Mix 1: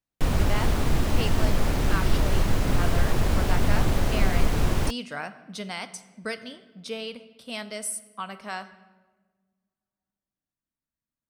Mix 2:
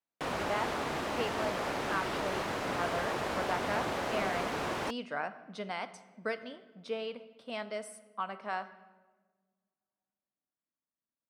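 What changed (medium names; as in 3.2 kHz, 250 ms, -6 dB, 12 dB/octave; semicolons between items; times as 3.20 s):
background: add tilt EQ +2.5 dB/octave; master: add band-pass filter 730 Hz, Q 0.59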